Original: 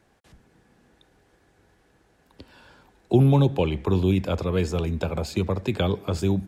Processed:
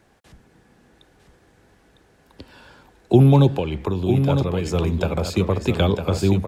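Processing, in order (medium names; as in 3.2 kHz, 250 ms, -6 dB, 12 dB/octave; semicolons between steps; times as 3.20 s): 3.51–4.66 s: compression 5:1, threshold -25 dBFS, peak gain reduction 9 dB; on a send: delay 954 ms -6.5 dB; on the sum: trim +4.5 dB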